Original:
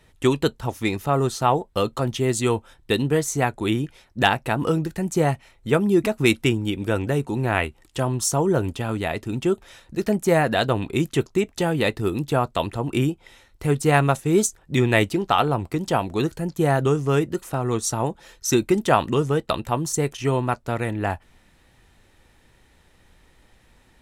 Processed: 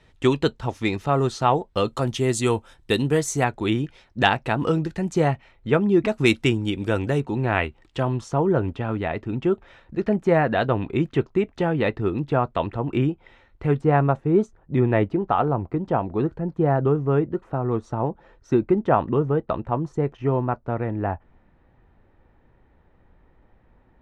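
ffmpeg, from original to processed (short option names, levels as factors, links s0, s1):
-af "asetnsamples=n=441:p=0,asendcmd='1.88 lowpass f 10000;3.44 lowpass f 5100;5.28 lowpass f 3100;6.08 lowpass f 6600;7.2 lowpass f 3600;8.21 lowpass f 2200;13.81 lowpass f 1200',lowpass=5400"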